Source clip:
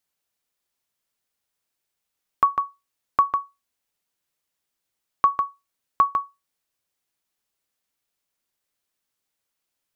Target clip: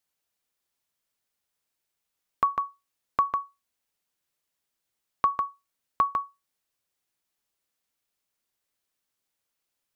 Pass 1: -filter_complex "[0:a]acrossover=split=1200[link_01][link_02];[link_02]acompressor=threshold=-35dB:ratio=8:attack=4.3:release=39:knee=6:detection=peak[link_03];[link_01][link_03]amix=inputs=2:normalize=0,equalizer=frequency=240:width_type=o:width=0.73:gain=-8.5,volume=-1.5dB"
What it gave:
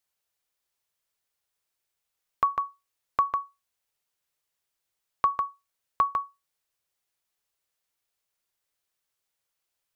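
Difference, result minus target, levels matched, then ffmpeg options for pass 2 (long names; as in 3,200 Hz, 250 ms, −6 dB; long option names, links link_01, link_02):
250 Hz band −4.5 dB
-filter_complex "[0:a]acrossover=split=1200[link_01][link_02];[link_02]acompressor=threshold=-35dB:ratio=8:attack=4.3:release=39:knee=6:detection=peak[link_03];[link_01][link_03]amix=inputs=2:normalize=0,volume=-1.5dB"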